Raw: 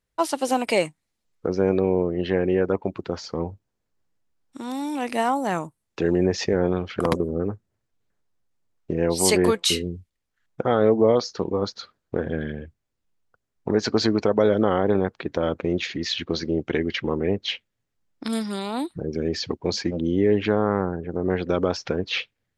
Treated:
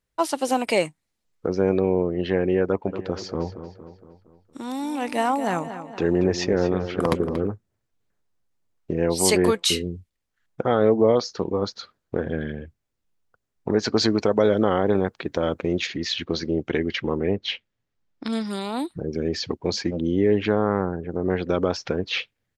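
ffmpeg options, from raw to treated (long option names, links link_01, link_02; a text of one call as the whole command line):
ffmpeg -i in.wav -filter_complex "[0:a]asplit=3[link_01][link_02][link_03];[link_01]afade=type=out:start_time=2.86:duration=0.02[link_04];[link_02]asplit=2[link_05][link_06];[link_06]adelay=232,lowpass=frequency=4500:poles=1,volume=-11dB,asplit=2[link_07][link_08];[link_08]adelay=232,lowpass=frequency=4500:poles=1,volume=0.53,asplit=2[link_09][link_10];[link_10]adelay=232,lowpass=frequency=4500:poles=1,volume=0.53,asplit=2[link_11][link_12];[link_12]adelay=232,lowpass=frequency=4500:poles=1,volume=0.53,asplit=2[link_13][link_14];[link_14]adelay=232,lowpass=frequency=4500:poles=1,volume=0.53,asplit=2[link_15][link_16];[link_16]adelay=232,lowpass=frequency=4500:poles=1,volume=0.53[link_17];[link_05][link_07][link_09][link_11][link_13][link_15][link_17]amix=inputs=7:normalize=0,afade=type=in:start_time=2.86:duration=0.02,afade=type=out:start_time=7.46:duration=0.02[link_18];[link_03]afade=type=in:start_time=7.46:duration=0.02[link_19];[link_04][link_18][link_19]amix=inputs=3:normalize=0,asettb=1/sr,asplit=3[link_20][link_21][link_22];[link_20]atrim=end=13.964[link_23];[link_21]atrim=start=13.96:end=15.87,asetpts=PTS-STARTPTS,afade=type=in:duration=0.004:curve=qsin,afade=type=out:start_time=1.906:duration=0.004:curve=qsin,highshelf=frequency=5100:gain=7[link_24];[link_22]atrim=start=15.866[link_25];[link_23][link_24]acrossfade=duration=0.004:curve1=hsin:curve2=qsin[link_26];[link_26][link_25]acrossfade=duration=0.004:curve1=qsin:curve2=hsin,asettb=1/sr,asplit=3[link_27][link_28][link_29];[link_27]atrim=end=17.244[link_30];[link_28]atrim=start=17.24:end=18.46,asetpts=PTS-STARTPTS,afade=type=in:duration=0.004:curve=qsin,afade=type=out:start_time=1.216:duration=0.004:curve=qsin,lowpass=5600[link_31];[link_29]atrim=start=18.456[link_32];[link_30][link_31]acrossfade=duration=0.004:curve1=hsin:curve2=qsin[link_33];[link_33][link_32]acrossfade=duration=0.004:curve1=qsin:curve2=hsin" out.wav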